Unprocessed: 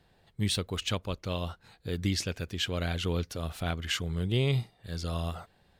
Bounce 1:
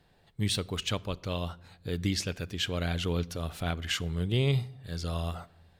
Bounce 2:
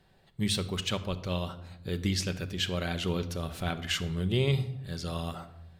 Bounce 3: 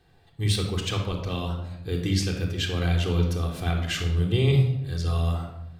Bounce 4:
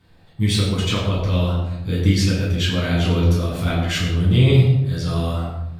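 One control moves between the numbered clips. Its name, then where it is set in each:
simulated room, microphone at: 0.34 m, 1.1 m, 3.7 m, 12 m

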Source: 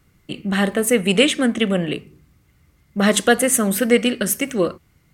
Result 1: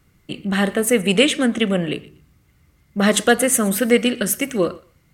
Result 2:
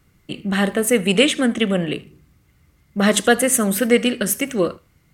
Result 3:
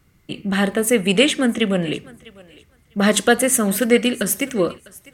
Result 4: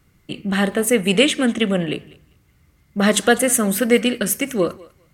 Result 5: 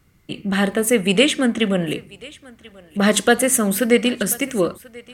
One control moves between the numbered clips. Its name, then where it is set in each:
thinning echo, time: 121 ms, 76 ms, 651 ms, 198 ms, 1037 ms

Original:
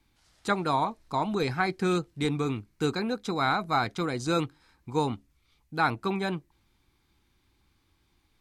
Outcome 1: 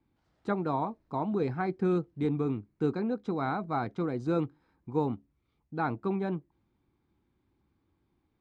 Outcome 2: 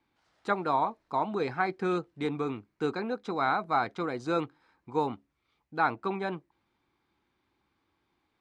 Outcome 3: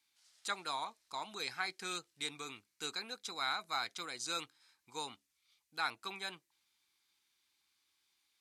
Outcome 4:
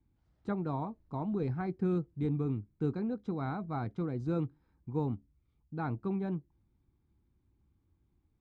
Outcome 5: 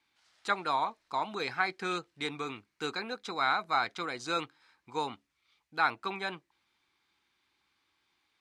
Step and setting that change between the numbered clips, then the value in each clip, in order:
band-pass filter, frequency: 260 Hz, 730 Hz, 7.6 kHz, 100 Hz, 2.2 kHz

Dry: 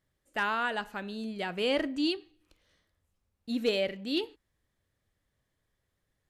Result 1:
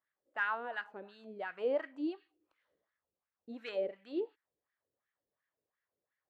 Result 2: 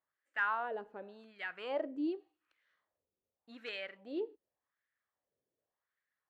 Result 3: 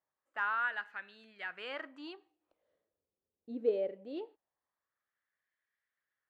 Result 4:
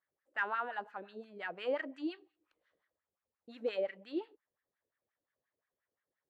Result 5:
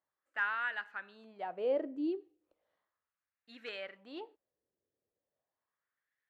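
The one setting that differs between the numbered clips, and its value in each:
wah-wah, rate: 2.8 Hz, 0.87 Hz, 0.22 Hz, 5.7 Hz, 0.36 Hz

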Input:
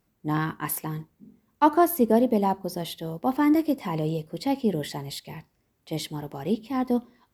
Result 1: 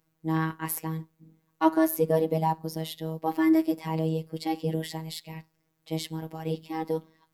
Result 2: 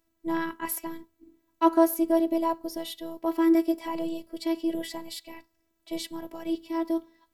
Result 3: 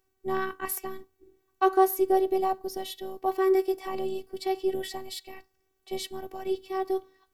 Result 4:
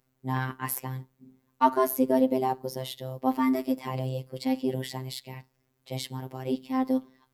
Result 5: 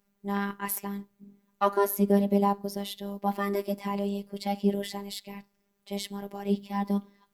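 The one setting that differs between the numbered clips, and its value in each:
robot voice, frequency: 160 Hz, 330 Hz, 380 Hz, 130 Hz, 200 Hz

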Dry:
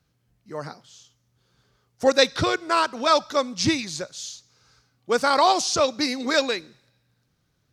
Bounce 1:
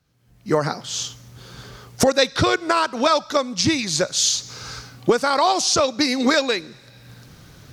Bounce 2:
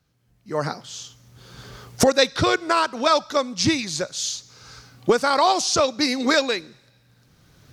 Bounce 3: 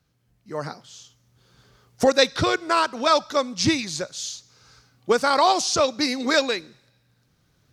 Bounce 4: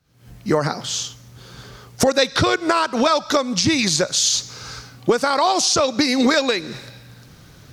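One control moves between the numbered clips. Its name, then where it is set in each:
recorder AGC, rising by: 37 dB/s, 14 dB/s, 5.1 dB/s, 90 dB/s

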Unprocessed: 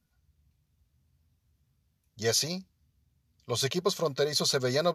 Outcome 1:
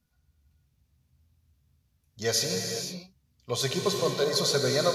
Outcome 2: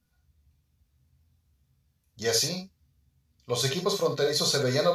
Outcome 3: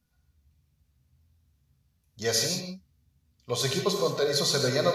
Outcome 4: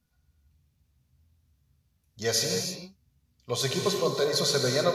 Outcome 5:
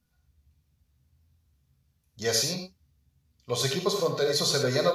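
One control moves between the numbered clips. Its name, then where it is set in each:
gated-style reverb, gate: 530 ms, 90 ms, 200 ms, 350 ms, 130 ms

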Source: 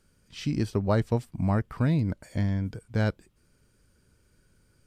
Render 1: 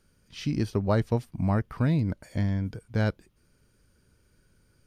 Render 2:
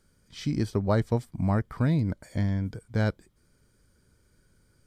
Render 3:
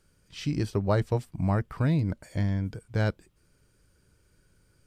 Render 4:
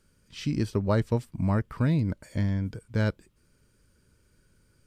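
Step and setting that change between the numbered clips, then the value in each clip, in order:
band-stop, frequency: 7.7 kHz, 2.7 kHz, 230 Hz, 740 Hz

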